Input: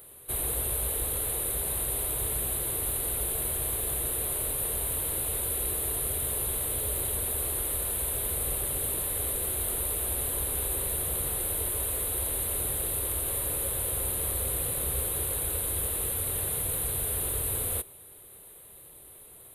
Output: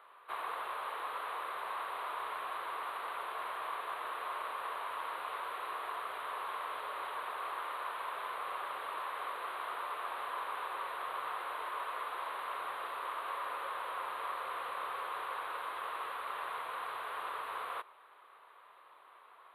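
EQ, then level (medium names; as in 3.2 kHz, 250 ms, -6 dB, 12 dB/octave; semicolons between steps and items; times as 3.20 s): resonant high-pass 1.1 kHz, resonance Q 4; distance through air 380 m; treble shelf 4.1 kHz -7.5 dB; +3.5 dB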